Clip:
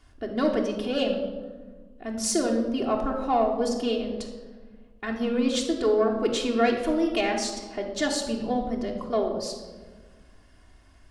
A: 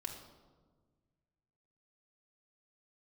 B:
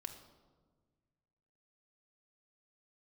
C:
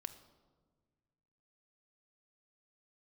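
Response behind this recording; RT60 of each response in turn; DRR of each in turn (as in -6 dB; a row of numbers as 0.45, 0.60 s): A; 1.5, 1.5, 1.5 s; -1.0, 3.5, 8.0 dB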